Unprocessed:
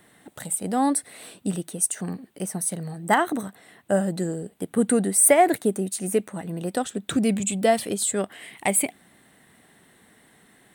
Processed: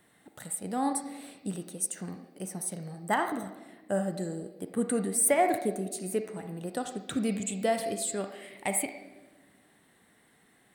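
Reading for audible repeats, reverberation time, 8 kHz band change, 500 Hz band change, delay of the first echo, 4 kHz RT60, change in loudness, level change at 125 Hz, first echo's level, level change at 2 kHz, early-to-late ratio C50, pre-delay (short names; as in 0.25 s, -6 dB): none, 1.2 s, -8.0 dB, -7.0 dB, none, 1.0 s, -7.5 dB, -7.5 dB, none, -7.0 dB, 7.0 dB, 33 ms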